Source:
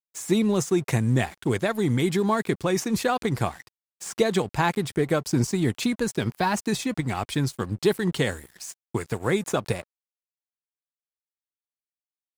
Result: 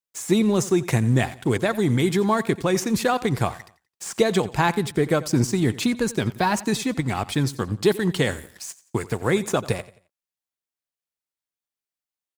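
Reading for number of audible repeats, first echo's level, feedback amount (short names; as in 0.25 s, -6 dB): 2, -18.0 dB, 35%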